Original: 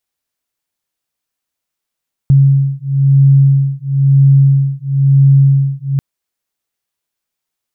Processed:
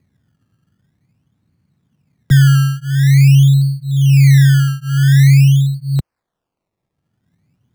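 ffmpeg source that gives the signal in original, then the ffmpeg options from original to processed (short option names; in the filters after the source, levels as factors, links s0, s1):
-f lavfi -i "aevalsrc='0.335*(sin(2*PI*137*t)+sin(2*PI*138*t))':d=3.69:s=44100"
-filter_complex "[0:a]acrossover=split=100|160|190[s0][s1][s2][s3];[s1]acompressor=mode=upward:threshold=0.0447:ratio=2.5[s4];[s0][s4][s2][s3]amix=inputs=4:normalize=0,acrusher=samples=20:mix=1:aa=0.000001:lfo=1:lforange=20:lforate=0.47"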